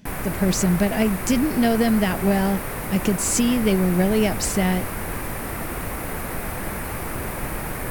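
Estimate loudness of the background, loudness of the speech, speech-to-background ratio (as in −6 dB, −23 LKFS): −29.0 LKFS, −21.5 LKFS, 7.5 dB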